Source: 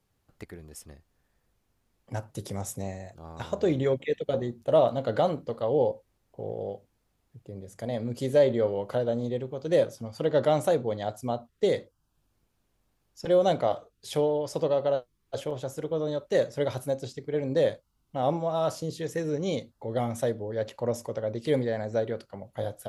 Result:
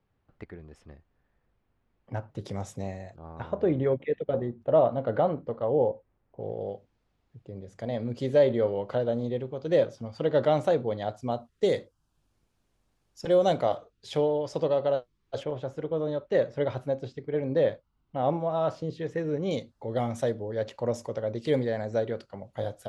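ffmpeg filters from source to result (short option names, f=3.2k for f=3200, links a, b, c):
-af "asetnsamples=n=441:p=0,asendcmd='2.41 lowpass f 4600;3.16 lowpass f 1800;6.41 lowpass f 4400;11.32 lowpass f 10000;13.76 lowpass f 5100;15.43 lowpass f 2800;19.51 lowpass f 7100',lowpass=2.5k"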